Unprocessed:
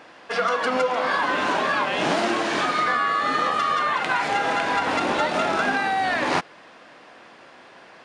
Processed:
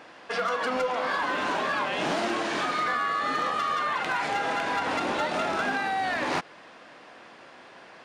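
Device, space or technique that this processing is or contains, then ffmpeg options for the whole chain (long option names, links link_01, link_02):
clipper into limiter: -af "asoftclip=type=hard:threshold=-15.5dB,alimiter=limit=-19dB:level=0:latency=1:release=74,volume=-1.5dB"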